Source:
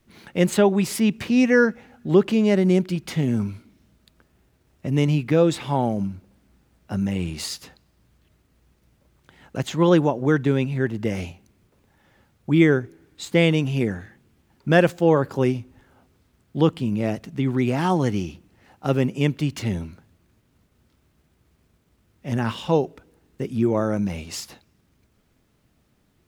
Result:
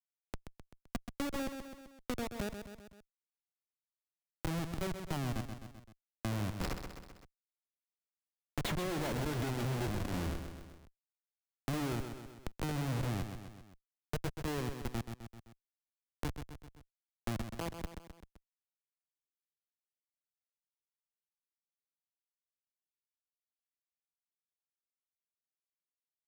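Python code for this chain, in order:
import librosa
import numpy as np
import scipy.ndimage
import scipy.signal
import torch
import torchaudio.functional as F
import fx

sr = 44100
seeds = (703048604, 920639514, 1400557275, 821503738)

p1 = fx.doppler_pass(x, sr, speed_mps=37, closest_m=21.0, pass_at_s=9.12)
p2 = fx.auto_swell(p1, sr, attack_ms=140.0)
p3 = fx.schmitt(p2, sr, flips_db=-38.0)
p4 = p3 + fx.echo_feedback(p3, sr, ms=129, feedback_pct=40, wet_db=-9, dry=0)
y = fx.band_squash(p4, sr, depth_pct=70)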